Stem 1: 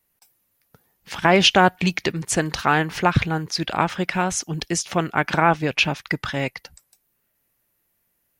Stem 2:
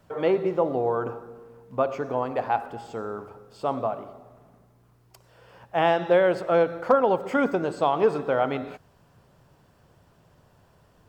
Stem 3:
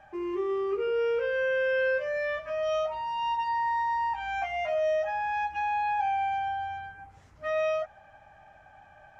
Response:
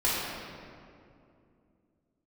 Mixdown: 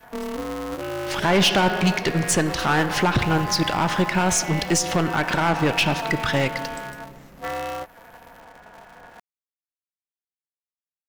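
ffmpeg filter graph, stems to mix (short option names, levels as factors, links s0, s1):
-filter_complex "[0:a]aeval=exprs='if(lt(val(0),0),0.708*val(0),val(0))':c=same,volume=1,asplit=2[s0][s1];[s1]volume=0.0944[s2];[2:a]adynamicequalizer=threshold=0.00891:dfrequency=540:dqfactor=0.72:tfrequency=540:tqfactor=0.72:attack=5:release=100:ratio=0.375:range=3:mode=cutabove:tftype=bell,acompressor=threshold=0.0141:ratio=3,aeval=exprs='val(0)*sgn(sin(2*PI*110*n/s))':c=same,volume=1.12[s3];[s0][s3]amix=inputs=2:normalize=0,acontrast=81,alimiter=limit=0.335:level=0:latency=1:release=112,volume=1[s4];[3:a]atrim=start_sample=2205[s5];[s2][s5]afir=irnorm=-1:irlink=0[s6];[s4][s6]amix=inputs=2:normalize=0,bandreject=f=2400:w=26,aeval=exprs='clip(val(0),-1,0.188)':c=same"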